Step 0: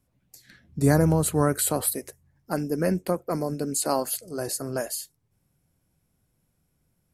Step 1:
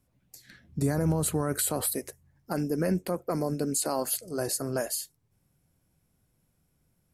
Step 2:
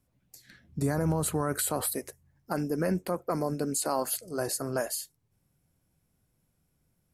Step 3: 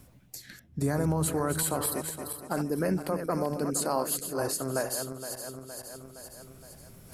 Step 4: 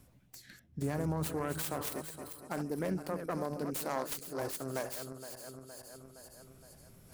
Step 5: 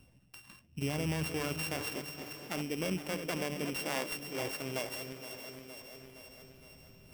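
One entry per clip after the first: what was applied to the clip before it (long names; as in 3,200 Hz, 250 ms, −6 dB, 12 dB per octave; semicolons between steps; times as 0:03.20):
brickwall limiter −17.5 dBFS, peak gain reduction 10.5 dB
dynamic equaliser 1,100 Hz, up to +5 dB, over −44 dBFS, Q 0.92; level −2 dB
feedback delay that plays each chunk backwards 233 ms, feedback 56%, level −8 dB; reversed playback; upward compression, threshold −32 dBFS; reversed playback
phase distortion by the signal itself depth 0.17 ms; level −6.5 dB
samples sorted by size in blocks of 16 samples; feedback delay with all-pass diffusion 574 ms, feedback 42%, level −13 dB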